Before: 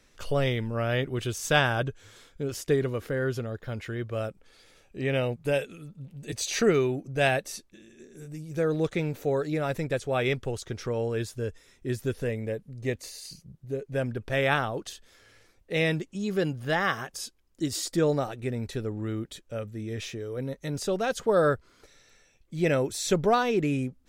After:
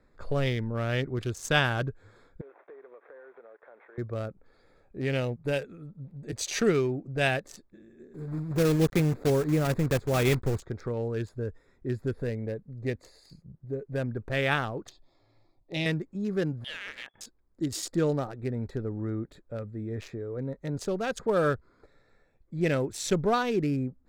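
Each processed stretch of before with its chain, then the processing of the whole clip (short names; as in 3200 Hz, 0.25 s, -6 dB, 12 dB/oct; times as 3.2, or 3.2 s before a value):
2.41–3.98 CVSD 16 kbps + HPF 450 Hz 24 dB/oct + compressor 5:1, threshold -47 dBFS
8.14–10.62 block floating point 3-bit + low shelf 470 Hz +7 dB
14.89–15.86 synth low-pass 4600 Hz, resonance Q 1.6 + fixed phaser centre 310 Hz, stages 8
16.64–17.21 compressor 12:1, threshold -31 dBFS + inverted band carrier 3400 Hz
whole clip: Wiener smoothing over 15 samples; dynamic EQ 650 Hz, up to -4 dB, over -36 dBFS, Q 1.1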